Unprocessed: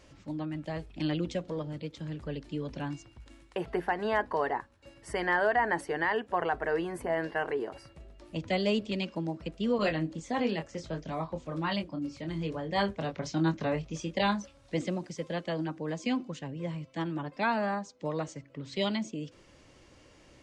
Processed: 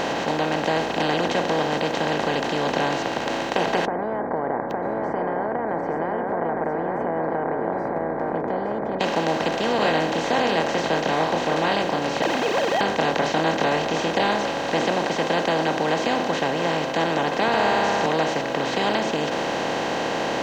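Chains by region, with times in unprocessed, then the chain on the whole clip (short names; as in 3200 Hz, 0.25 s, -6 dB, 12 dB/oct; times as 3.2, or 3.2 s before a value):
3.85–9.01 compressor 2.5:1, threshold -50 dBFS + Gaussian blur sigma 12 samples + echo 0.86 s -7.5 dB
12.22–12.81 sine-wave speech + sample gate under -43.5 dBFS + small resonant body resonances 560/2500 Hz, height 12 dB, ringing for 20 ms
17.48–18.06 resonant low shelf 150 Hz +13.5 dB, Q 3 + flutter echo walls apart 10 m, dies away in 1.2 s
whole clip: per-bin compression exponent 0.2; low shelf 190 Hz -7.5 dB; notch 590 Hz, Q 12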